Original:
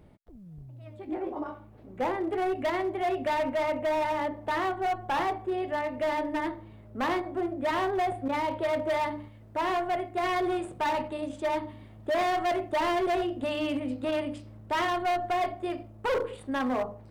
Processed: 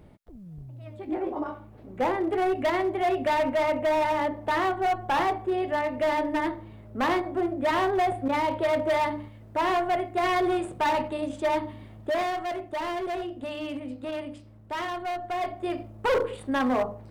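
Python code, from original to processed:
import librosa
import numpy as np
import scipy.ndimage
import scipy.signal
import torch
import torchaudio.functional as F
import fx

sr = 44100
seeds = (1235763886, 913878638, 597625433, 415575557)

y = fx.gain(x, sr, db=fx.line((11.95, 3.5), (12.43, -4.0), (15.23, -4.0), (15.8, 4.0)))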